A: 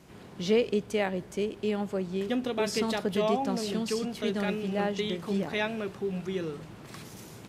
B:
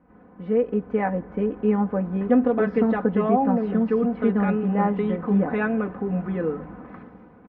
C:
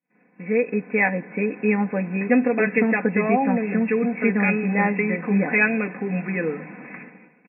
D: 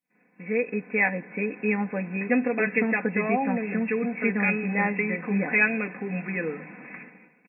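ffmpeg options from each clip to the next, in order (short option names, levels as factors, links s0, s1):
-af "lowpass=f=1600:w=0.5412,lowpass=f=1600:w=1.3066,aecho=1:1:4:0.84,dynaudnorm=f=130:g=11:m=3.98,volume=0.596"
-af "aexciter=amount=16:drive=5.4:freq=2000,agate=range=0.0224:threshold=0.00891:ratio=3:detection=peak,afftfilt=real='re*between(b*sr/4096,120,2700)':imag='im*between(b*sr/4096,120,2700)':win_size=4096:overlap=0.75"
-af "highshelf=f=2300:g=8,volume=0.531"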